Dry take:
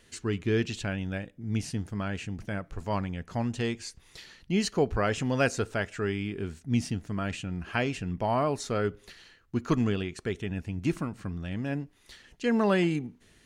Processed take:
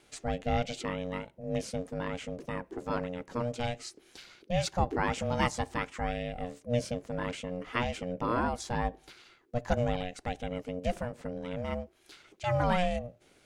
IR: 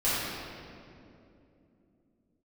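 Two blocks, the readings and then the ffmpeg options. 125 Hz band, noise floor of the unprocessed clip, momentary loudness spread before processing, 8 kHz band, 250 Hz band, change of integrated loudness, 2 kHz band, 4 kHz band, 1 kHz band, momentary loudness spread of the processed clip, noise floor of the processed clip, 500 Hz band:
-4.0 dB, -61 dBFS, 10 LU, -3.0 dB, -6.5 dB, -3.0 dB, -3.5 dB, -2.0 dB, +2.0 dB, 9 LU, -64 dBFS, -2.0 dB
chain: -af "aeval=exprs='val(0)*sin(2*PI*360*n/s)':c=same"

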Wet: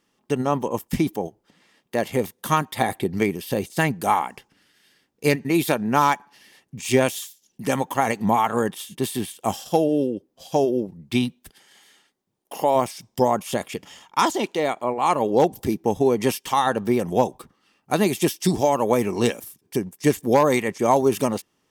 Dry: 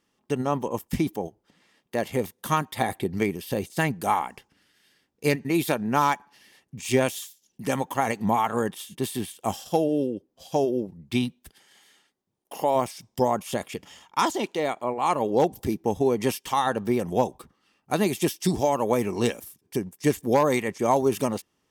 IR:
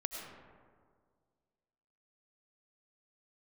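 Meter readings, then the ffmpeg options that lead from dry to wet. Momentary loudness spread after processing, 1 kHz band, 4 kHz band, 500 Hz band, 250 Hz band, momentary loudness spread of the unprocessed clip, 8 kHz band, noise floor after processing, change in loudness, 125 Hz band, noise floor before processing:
9 LU, +3.5 dB, +3.5 dB, +3.5 dB, +3.5 dB, 9 LU, +3.5 dB, -72 dBFS, +3.5 dB, +2.5 dB, -75 dBFS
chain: -af "equalizer=f=64:t=o:w=0.78:g=-7,volume=3.5dB"

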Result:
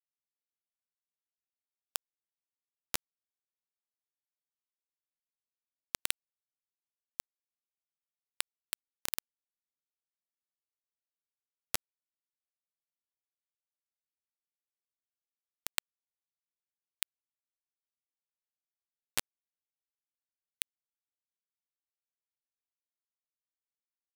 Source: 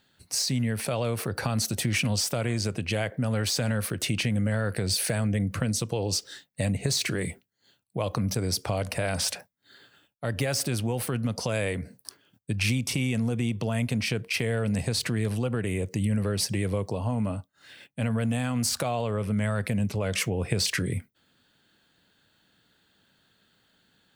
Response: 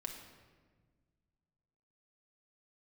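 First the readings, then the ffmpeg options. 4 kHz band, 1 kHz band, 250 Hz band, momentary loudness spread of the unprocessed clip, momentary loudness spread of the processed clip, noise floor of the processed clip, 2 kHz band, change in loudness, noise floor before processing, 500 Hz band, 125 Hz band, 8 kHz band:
-14.5 dB, -18.0 dB, -36.5 dB, 6 LU, 6 LU, under -85 dBFS, -16.0 dB, -11.5 dB, -69 dBFS, -30.5 dB, under -40 dB, -13.0 dB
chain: -filter_complex "[0:a]aeval=exprs='if(lt(val(0),0),0.251*val(0),val(0))':c=same,asplit=3[a][b][c];[a]bandpass=f=300:t=q:w=8,volume=0dB[d];[b]bandpass=f=870:t=q:w=8,volume=-6dB[e];[c]bandpass=f=2.24k:t=q:w=8,volume=-9dB[f];[d][e][f]amix=inputs=3:normalize=0,afftfilt=real='re*gte(hypot(re,im),0.00316)':imag='im*gte(hypot(re,im),0.00316)':win_size=1024:overlap=0.75,acrossover=split=350[g][h];[g]dynaudnorm=f=240:g=7:m=14dB[i];[i][h]amix=inputs=2:normalize=0,tiltshelf=f=840:g=9.5,afftfilt=real='re*lt(hypot(re,im),0.224)':imag='im*lt(hypot(re,im),0.224)':win_size=1024:overlap=0.75,aeval=exprs='0.0596*sin(PI/2*3.98*val(0)/0.0596)':c=same,lowpass=f=2.9k:t=q:w=0.5098,lowpass=f=2.9k:t=q:w=0.6013,lowpass=f=2.9k:t=q:w=0.9,lowpass=f=2.9k:t=q:w=2.563,afreqshift=-3400,highpass=42,highshelf=f=2.2k:g=-11,asplit=2[j][k];[k]aecho=0:1:325|650|975|1300|1625|1950|2275:0.398|0.227|0.129|0.0737|0.042|0.024|0.0137[l];[j][l]amix=inputs=2:normalize=0,acrusher=bits=3:mix=0:aa=0.000001,volume=10.5dB"

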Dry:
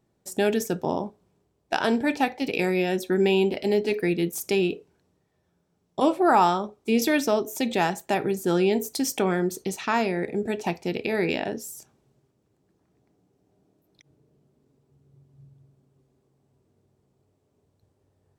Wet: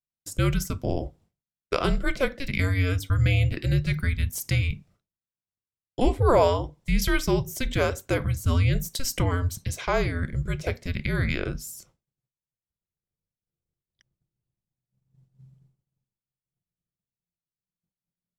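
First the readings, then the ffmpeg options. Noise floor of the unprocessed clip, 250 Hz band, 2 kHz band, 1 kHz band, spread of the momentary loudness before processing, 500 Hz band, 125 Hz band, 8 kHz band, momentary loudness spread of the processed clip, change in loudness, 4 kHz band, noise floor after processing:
-72 dBFS, -5.0 dB, -0.5 dB, -6.0 dB, 8 LU, -4.0 dB, +11.0 dB, -0.5 dB, 8 LU, -1.0 dB, -1.0 dB, under -85 dBFS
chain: -af "afreqshift=-270,agate=range=-33dB:threshold=-51dB:ratio=3:detection=peak"

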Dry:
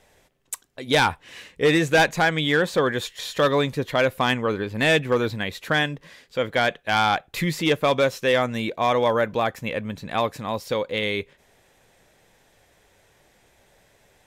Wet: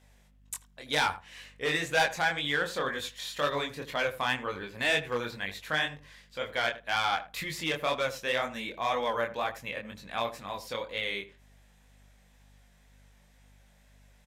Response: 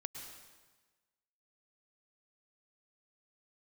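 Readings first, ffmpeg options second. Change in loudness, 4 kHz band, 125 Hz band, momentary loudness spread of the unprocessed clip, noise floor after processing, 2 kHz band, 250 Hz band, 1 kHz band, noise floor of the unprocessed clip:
-8.5 dB, -6.0 dB, -15.0 dB, 10 LU, -61 dBFS, -6.0 dB, -14.5 dB, -7.5 dB, -61 dBFS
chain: -filter_complex "[0:a]aeval=exprs='val(0)+0.00501*(sin(2*PI*50*n/s)+sin(2*PI*2*50*n/s)/2+sin(2*PI*3*50*n/s)/3+sin(2*PI*4*50*n/s)/4+sin(2*PI*5*50*n/s)/5)':c=same,equalizer=f=380:t=o:w=0.59:g=-3.5,flanger=delay=20:depth=6:speed=2,lowshelf=f=490:g=-10.5,asplit=2[a][b];[b]adelay=81,lowpass=f=1.1k:p=1,volume=-12dB,asplit=2[c][d];[d]adelay=81,lowpass=f=1.1k:p=1,volume=0.15[e];[c][e]amix=inputs=2:normalize=0[f];[a][f]amix=inputs=2:normalize=0,volume=-2.5dB"

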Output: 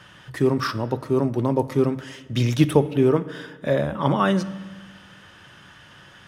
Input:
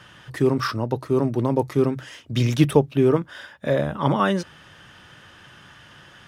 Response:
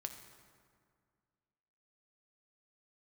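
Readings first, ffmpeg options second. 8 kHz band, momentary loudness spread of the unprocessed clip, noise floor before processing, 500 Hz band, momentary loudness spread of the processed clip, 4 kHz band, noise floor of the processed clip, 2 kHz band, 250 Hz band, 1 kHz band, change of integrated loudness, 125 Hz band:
-0.5 dB, 13 LU, -49 dBFS, -0.5 dB, 14 LU, 0.0 dB, -49 dBFS, -0.5 dB, 0.0 dB, 0.0 dB, -0.5 dB, -0.5 dB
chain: -filter_complex "[0:a]asplit=2[a][b];[1:a]atrim=start_sample=2205,asetrate=66150,aresample=44100[c];[b][c]afir=irnorm=-1:irlink=0,volume=3dB[d];[a][d]amix=inputs=2:normalize=0,volume=-4.5dB"

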